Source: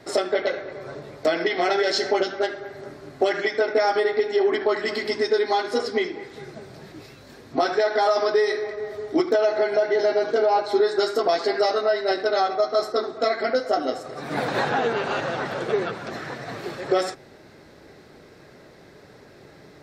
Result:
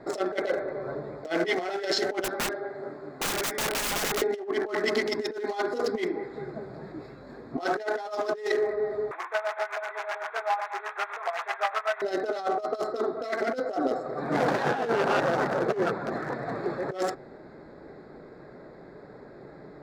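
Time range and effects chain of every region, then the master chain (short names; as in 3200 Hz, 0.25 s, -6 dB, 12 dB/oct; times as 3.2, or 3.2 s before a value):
2.24–4.22 HPF 74 Hz + low shelf 200 Hz -7.5 dB + wrapped overs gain 24 dB
9.11–12.02 delta modulation 16 kbps, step -21 dBFS + HPF 850 Hz 24 dB/oct + tremolo 7.9 Hz, depth 77%
whole clip: Wiener smoothing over 15 samples; bell 91 Hz -10 dB 0.71 oct; negative-ratio compressor -26 dBFS, ratio -0.5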